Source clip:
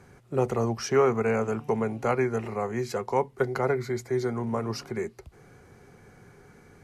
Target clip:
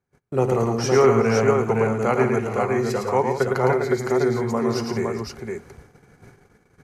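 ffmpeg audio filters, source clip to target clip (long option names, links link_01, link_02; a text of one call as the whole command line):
ffmpeg -i in.wav -filter_complex "[0:a]asplit=2[link_01][link_02];[link_02]aecho=0:1:53|54|109|170|405|512:0.126|0.133|0.562|0.266|0.119|0.668[link_03];[link_01][link_03]amix=inputs=2:normalize=0,agate=range=-32dB:threshold=-48dB:ratio=16:detection=peak,volume=4dB" out.wav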